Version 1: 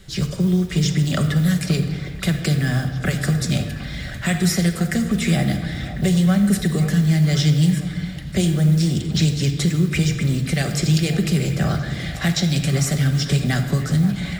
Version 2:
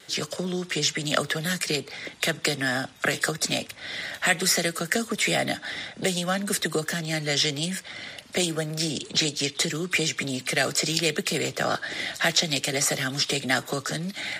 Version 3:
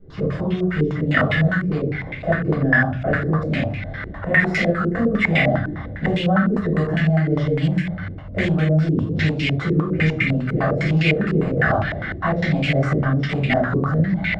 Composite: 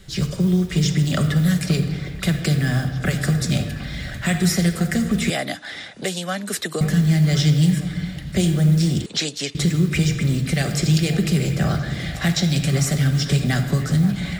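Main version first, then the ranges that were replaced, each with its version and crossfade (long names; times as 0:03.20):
1
0:05.30–0:06.81: punch in from 2
0:09.06–0:09.55: punch in from 2
not used: 3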